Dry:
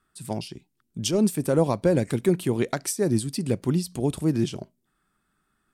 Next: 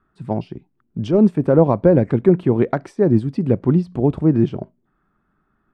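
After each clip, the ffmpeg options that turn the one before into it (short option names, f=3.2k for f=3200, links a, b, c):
-af "lowpass=1.3k,volume=8dB"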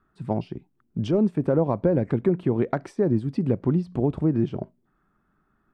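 -af "acompressor=threshold=-18dB:ratio=2.5,volume=-2dB"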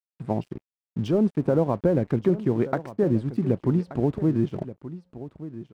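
-af "aeval=exprs='sgn(val(0))*max(abs(val(0))-0.00447,0)':c=same,aecho=1:1:1178:0.188"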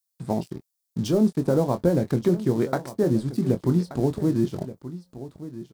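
-filter_complex "[0:a]aexciter=amount=2.2:drive=9.5:freq=3.8k,asplit=2[a][b];[b]adelay=23,volume=-8.5dB[c];[a][c]amix=inputs=2:normalize=0"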